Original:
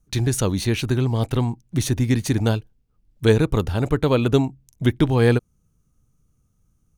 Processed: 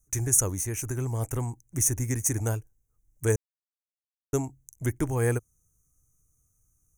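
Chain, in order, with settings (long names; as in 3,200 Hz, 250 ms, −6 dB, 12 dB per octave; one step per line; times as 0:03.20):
drawn EQ curve 110 Hz 0 dB, 210 Hz −10 dB, 300 Hz −3 dB, 2,100 Hz −1 dB, 4,100 Hz −23 dB, 6,200 Hz +14 dB
0:00.52–0:00.98: downward compressor 4 to 1, threshold −21 dBFS, peak gain reduction 4.5 dB
0:03.36–0:04.33: silence
level −6.5 dB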